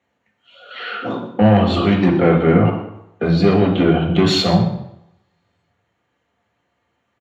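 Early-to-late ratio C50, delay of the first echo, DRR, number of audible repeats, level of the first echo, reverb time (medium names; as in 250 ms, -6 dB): 7.0 dB, 124 ms, -0.5 dB, 1, -13.0 dB, 0.80 s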